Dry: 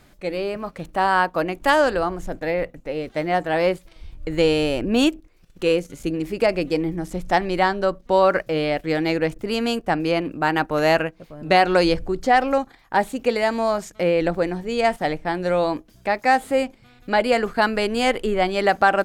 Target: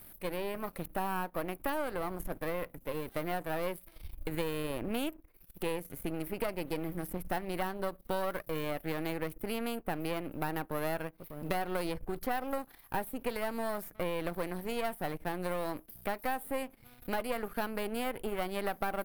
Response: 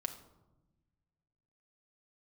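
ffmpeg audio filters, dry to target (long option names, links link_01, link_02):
-filter_complex "[0:a]aeval=exprs='if(lt(val(0),0),0.251*val(0),val(0))':channel_layout=same,aexciter=amount=15.7:drive=5:freq=10000,acrossover=split=1100|2500[link_01][link_02][link_03];[link_01]acompressor=threshold=-29dB:ratio=4[link_04];[link_02]acompressor=threshold=-40dB:ratio=4[link_05];[link_03]acompressor=threshold=-44dB:ratio=4[link_06];[link_04][link_05][link_06]amix=inputs=3:normalize=0,volume=-3.5dB"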